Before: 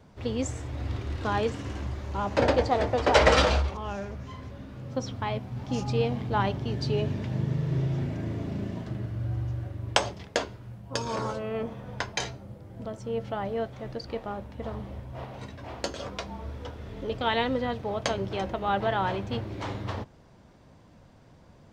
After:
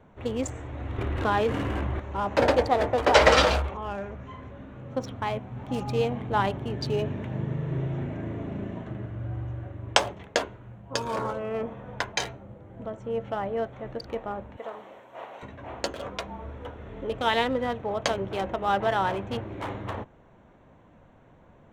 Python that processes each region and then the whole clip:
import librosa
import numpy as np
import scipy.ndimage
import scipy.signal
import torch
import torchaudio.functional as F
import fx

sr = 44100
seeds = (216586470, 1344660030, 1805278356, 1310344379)

y = fx.chain(x, sr, fx.lowpass(hz=4700.0, slope=12),
    fx.env_flatten(amount_pct=70), at=(0.98, 2.0))
y = fx.chain(y, sr, fx.highpass(hz=450.0, slope=12),
    fx.high_shelf(hz=4600.0, db=11.5), at=(14.57, 15.43))
y = fx.wiener(y, sr, points=9)
y = fx.peak_eq(y, sr, hz=98.0, db=-6.0, octaves=2.9)
y = F.gain(torch.from_numpy(y), 3.0).numpy()